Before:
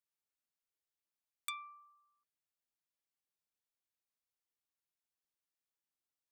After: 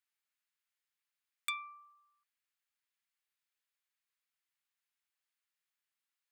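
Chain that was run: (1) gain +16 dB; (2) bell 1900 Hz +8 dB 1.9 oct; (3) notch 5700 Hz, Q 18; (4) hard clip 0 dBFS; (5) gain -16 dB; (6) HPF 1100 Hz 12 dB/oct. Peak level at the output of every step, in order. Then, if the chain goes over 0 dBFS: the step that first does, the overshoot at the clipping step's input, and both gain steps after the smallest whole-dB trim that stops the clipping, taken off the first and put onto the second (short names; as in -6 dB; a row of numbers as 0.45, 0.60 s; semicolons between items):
-7.0, -3.5, -3.5, -3.5, -19.5, -20.5 dBFS; no overload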